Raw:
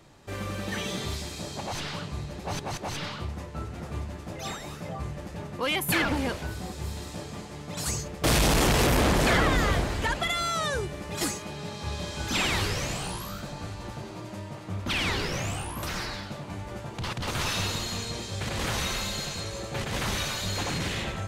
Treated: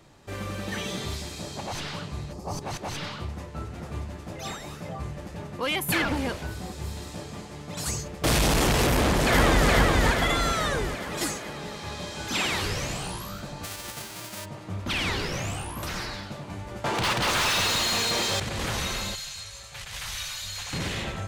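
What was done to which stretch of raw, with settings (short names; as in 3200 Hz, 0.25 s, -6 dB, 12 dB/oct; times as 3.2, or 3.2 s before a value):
2.33–2.62 spectral gain 1300–4300 Hz -12 dB
8.9–9.68 echo throw 0.42 s, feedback 60%, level -0.5 dB
10.95–12.64 HPF 150 Hz 6 dB/oct
13.63–14.44 spectral whitening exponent 0.3
16.84–18.4 overdrive pedal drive 28 dB, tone 5200 Hz, clips at -17.5 dBFS
19.15–20.73 passive tone stack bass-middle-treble 10-0-10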